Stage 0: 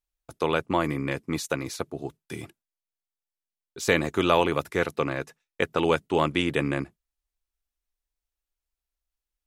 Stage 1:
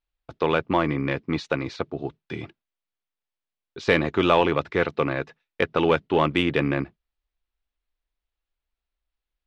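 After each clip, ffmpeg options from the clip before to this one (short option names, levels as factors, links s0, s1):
-filter_complex "[0:a]lowpass=f=4100:w=0.5412,lowpass=f=4100:w=1.3066,asplit=2[s0][s1];[s1]asoftclip=type=tanh:threshold=0.119,volume=0.531[s2];[s0][s2]amix=inputs=2:normalize=0"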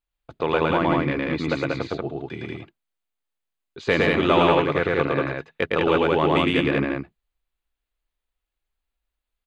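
-af "bandreject=f=5500:w=5.2,aecho=1:1:110.8|186.6:0.891|0.794,volume=0.841"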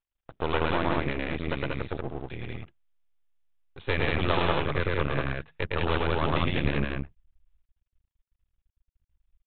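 -af "asubboost=boost=10.5:cutoff=88,aresample=8000,aeval=exprs='max(val(0),0)':c=same,aresample=44100,volume=0.841"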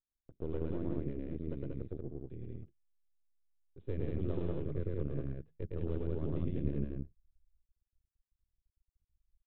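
-af "firequalizer=gain_entry='entry(380,0);entry(810,-21);entry(2300,-25)':delay=0.05:min_phase=1,volume=0.447"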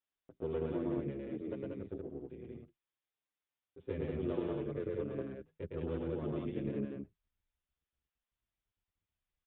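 -filter_complex "[0:a]highpass=f=380:p=1,aresample=8000,aresample=44100,asplit=2[s0][s1];[s1]adelay=7.3,afreqshift=-0.57[s2];[s0][s2]amix=inputs=2:normalize=1,volume=2.66"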